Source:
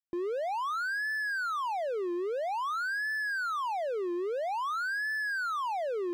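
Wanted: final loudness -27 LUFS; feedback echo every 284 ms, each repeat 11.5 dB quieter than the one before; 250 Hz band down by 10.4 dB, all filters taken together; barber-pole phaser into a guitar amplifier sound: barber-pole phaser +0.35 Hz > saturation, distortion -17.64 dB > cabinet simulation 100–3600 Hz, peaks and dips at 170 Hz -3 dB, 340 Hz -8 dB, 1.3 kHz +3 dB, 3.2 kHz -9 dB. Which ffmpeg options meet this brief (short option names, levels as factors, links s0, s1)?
-filter_complex "[0:a]equalizer=f=250:t=o:g=-8,aecho=1:1:284|568|852:0.266|0.0718|0.0194,asplit=2[s0][s1];[s1]afreqshift=0.35[s2];[s0][s2]amix=inputs=2:normalize=1,asoftclip=threshold=0.0266,highpass=100,equalizer=f=170:t=q:w=4:g=-3,equalizer=f=340:t=q:w=4:g=-8,equalizer=f=1300:t=q:w=4:g=3,equalizer=f=3200:t=q:w=4:g=-9,lowpass=f=3600:w=0.5412,lowpass=f=3600:w=1.3066,volume=3.16"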